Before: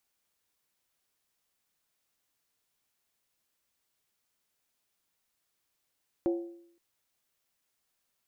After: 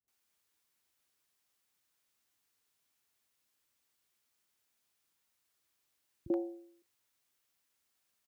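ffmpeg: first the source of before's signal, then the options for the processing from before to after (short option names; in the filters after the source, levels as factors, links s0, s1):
-f lavfi -i "aevalsrc='0.0708*pow(10,-3*t/0.69)*sin(2*PI*342*t)+0.0251*pow(10,-3*t/0.547)*sin(2*PI*545.1*t)+0.00891*pow(10,-3*t/0.472)*sin(2*PI*730.5*t)+0.00316*pow(10,-3*t/0.455)*sin(2*PI*785.2*t)+0.00112*pow(10,-3*t/0.424)*sin(2*PI*907.3*t)':d=0.52:s=44100"
-filter_complex "[0:a]highpass=52,acrossover=split=160|600[s0][s1][s2];[s1]adelay=40[s3];[s2]adelay=80[s4];[s0][s3][s4]amix=inputs=3:normalize=0"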